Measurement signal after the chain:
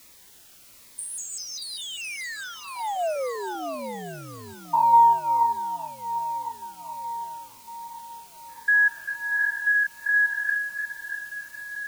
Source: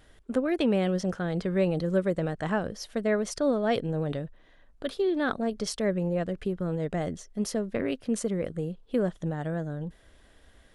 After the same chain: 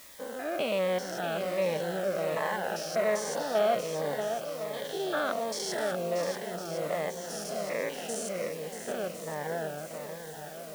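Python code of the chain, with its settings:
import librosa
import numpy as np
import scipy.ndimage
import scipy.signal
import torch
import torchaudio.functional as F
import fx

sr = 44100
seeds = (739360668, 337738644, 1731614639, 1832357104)

p1 = fx.spec_steps(x, sr, hold_ms=200)
p2 = scipy.signal.sosfilt(scipy.signal.butter(2, 190.0, 'highpass', fs=sr, output='sos'), p1)
p3 = fx.low_shelf_res(p2, sr, hz=460.0, db=-13.5, q=1.5)
p4 = fx.dmg_noise_colour(p3, sr, seeds[0], colour='white', level_db=-59.0)
p5 = p4 + fx.echo_swing(p4, sr, ms=1056, ratio=1.5, feedback_pct=45, wet_db=-8.0, dry=0)
p6 = fx.notch_cascade(p5, sr, direction='falling', hz=1.3)
y = F.gain(torch.from_numpy(p6), 7.5).numpy()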